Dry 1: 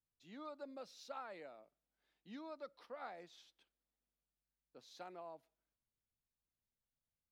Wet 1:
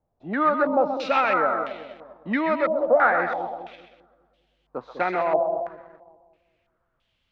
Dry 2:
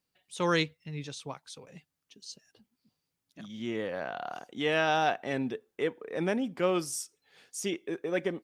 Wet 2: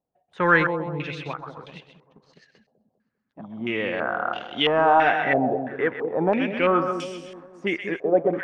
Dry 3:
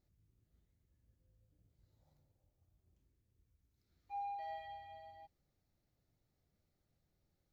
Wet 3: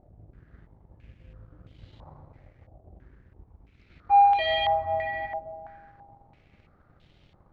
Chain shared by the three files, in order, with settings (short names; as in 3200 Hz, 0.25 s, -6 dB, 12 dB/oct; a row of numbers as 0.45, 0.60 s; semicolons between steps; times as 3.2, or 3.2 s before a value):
split-band echo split 610 Hz, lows 0.2 s, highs 0.129 s, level -7.5 dB; sample leveller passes 1; stepped low-pass 3 Hz 700–3100 Hz; match loudness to -23 LUFS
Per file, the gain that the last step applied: +22.0, +2.0, +21.0 dB